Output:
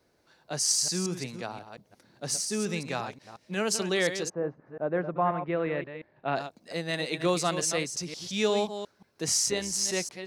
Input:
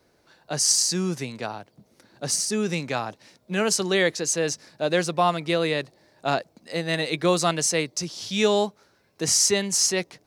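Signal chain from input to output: reverse delay 0.177 s, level -9.5 dB; 4.28–6.35 LPF 1200 Hz -> 2900 Hz 24 dB/oct; 9.4–9.89 AM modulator 120 Hz, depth 30%; gain -5.5 dB

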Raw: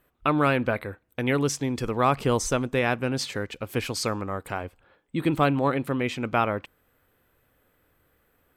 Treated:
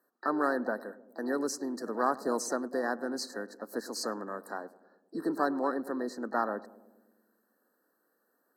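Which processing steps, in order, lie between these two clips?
steep high-pass 200 Hz 48 dB/oct; harmoniser +5 st -12 dB; added harmonics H 4 -43 dB, 7 -43 dB, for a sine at -6.5 dBFS; brick-wall FIR band-stop 1900–3900 Hz; on a send: darkening echo 0.104 s, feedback 70%, low-pass 850 Hz, level -17 dB; on the sum: gain -6.5 dB

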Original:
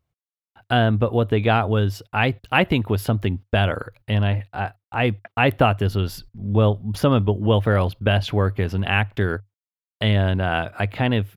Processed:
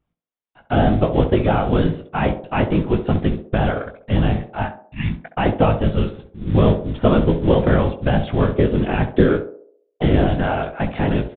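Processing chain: de-esser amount 95%; 4.92–5.13 spectral repair 200–1700 Hz; 8.49–10.25 bell 330 Hz +10.5 dB 0.88 oct; whisperiser; modulation noise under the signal 18 dB; wow and flutter 51 cents; in parallel at -11 dB: sample-and-hold 12×; on the sum: doubler 19 ms -8 dB; on a send: narrowing echo 67 ms, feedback 52%, band-pass 500 Hz, level -8 dB; on the sum: downsampling 8000 Hz

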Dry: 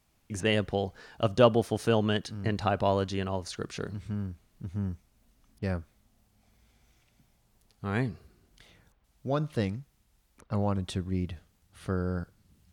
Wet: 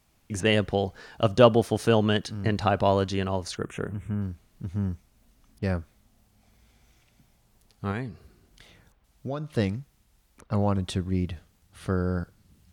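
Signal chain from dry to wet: 3.57–4.22 Butterworth band-stop 4600 Hz, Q 0.97; 7.91–9.55 compressor 3:1, threshold -35 dBFS, peak gain reduction 9 dB; gain +4 dB

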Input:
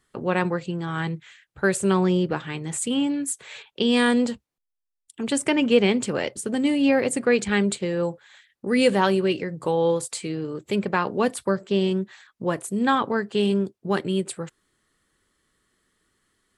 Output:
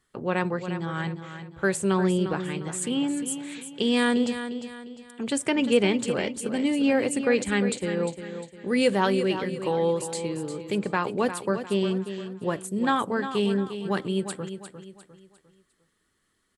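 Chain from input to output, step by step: feedback echo 0.352 s, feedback 38%, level -10 dB; gain -3 dB

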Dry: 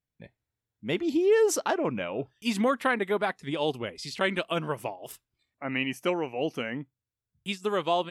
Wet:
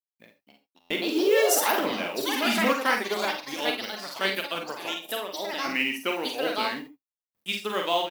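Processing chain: G.711 law mismatch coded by A; tilt +3.5 dB/oct; echoes that change speed 0.312 s, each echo +4 st, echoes 3; graphic EQ 125/250/8000 Hz -6/+7/-7 dB; early reflections 42 ms -6.5 dB, 52 ms -7 dB; non-linear reverb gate 0.1 s rising, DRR 11 dB; stuck buffer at 0.8, samples 512, times 8; 2.73–5.09 upward expander 1.5:1, over -37 dBFS

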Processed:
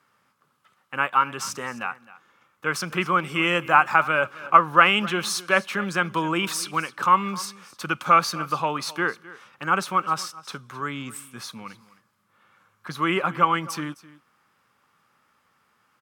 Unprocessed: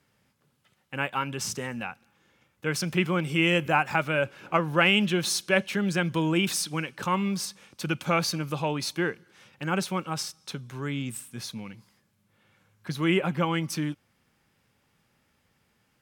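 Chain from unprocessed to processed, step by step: HPF 230 Hz 6 dB/oct; bell 1200 Hz +14.5 dB 0.71 oct; echo 0.26 s -19 dB

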